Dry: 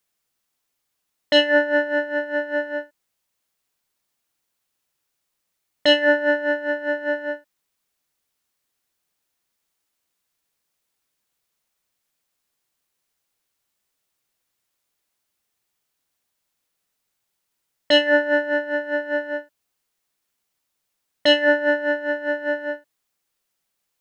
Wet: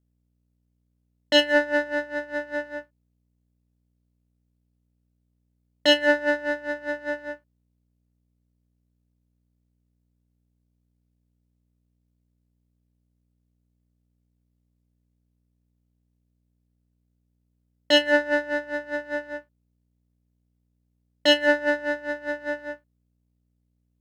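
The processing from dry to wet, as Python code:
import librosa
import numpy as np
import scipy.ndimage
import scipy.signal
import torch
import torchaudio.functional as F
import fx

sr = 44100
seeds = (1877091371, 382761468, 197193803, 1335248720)

y = fx.add_hum(x, sr, base_hz=60, snr_db=26)
y = fx.power_curve(y, sr, exponent=1.4)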